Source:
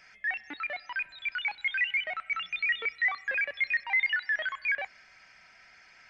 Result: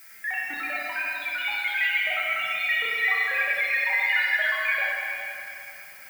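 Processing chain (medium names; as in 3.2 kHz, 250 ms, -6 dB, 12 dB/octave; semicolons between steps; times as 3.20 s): coarse spectral quantiser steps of 15 dB; Schroeder reverb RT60 2.9 s, combs from 28 ms, DRR -5 dB; added noise violet -49 dBFS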